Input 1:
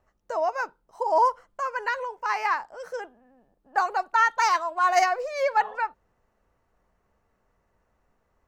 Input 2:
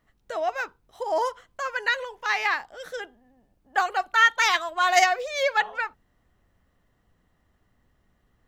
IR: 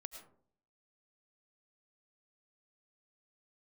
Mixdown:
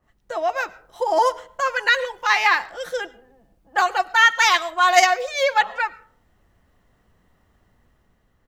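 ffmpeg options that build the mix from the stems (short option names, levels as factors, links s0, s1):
-filter_complex "[0:a]volume=0.631[s0];[1:a]adynamicequalizer=threshold=0.0282:dfrequency=2000:dqfactor=0.7:tfrequency=2000:tqfactor=0.7:attack=5:release=100:ratio=0.375:range=1.5:mode=boostabove:tftype=highshelf,adelay=5.3,volume=0.944,asplit=2[s1][s2];[s2]volume=0.473[s3];[2:a]atrim=start_sample=2205[s4];[s3][s4]afir=irnorm=-1:irlink=0[s5];[s0][s1][s5]amix=inputs=3:normalize=0,dynaudnorm=f=160:g=9:m=1.58"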